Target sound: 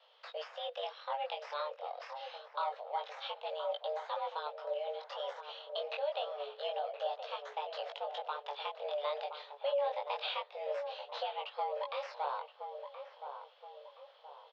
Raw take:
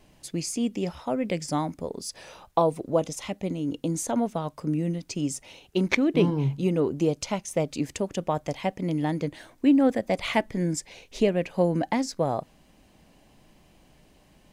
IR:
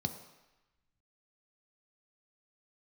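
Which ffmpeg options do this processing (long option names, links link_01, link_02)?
-filter_complex "[0:a]deesser=0.8,aexciter=amount=5.9:drive=5.6:freq=2600,asplit=2[link_01][link_02];[link_02]acrusher=samples=15:mix=1:aa=0.000001:lfo=1:lforange=9:lforate=3.8,volume=-10.5dB[link_03];[link_01][link_03]amix=inputs=2:normalize=0,flanger=delay=18:depth=4.7:speed=0.27,alimiter=limit=-18dB:level=0:latency=1:release=378,asplit=2[link_04][link_05];[link_05]adelay=1022,lowpass=frequency=1000:poles=1,volume=-7.5dB,asplit=2[link_06][link_07];[link_07]adelay=1022,lowpass=frequency=1000:poles=1,volume=0.46,asplit=2[link_08][link_09];[link_09]adelay=1022,lowpass=frequency=1000:poles=1,volume=0.46,asplit=2[link_10][link_11];[link_11]adelay=1022,lowpass=frequency=1000:poles=1,volume=0.46,asplit=2[link_12][link_13];[link_13]adelay=1022,lowpass=frequency=1000:poles=1,volume=0.46[link_14];[link_06][link_08][link_10][link_12][link_14]amix=inputs=5:normalize=0[link_15];[link_04][link_15]amix=inputs=2:normalize=0,highpass=frequency=210:width_type=q:width=0.5412,highpass=frequency=210:width_type=q:width=1.307,lowpass=frequency=3500:width_type=q:width=0.5176,lowpass=frequency=3500:width_type=q:width=0.7071,lowpass=frequency=3500:width_type=q:width=1.932,afreqshift=290,volume=-7.5dB"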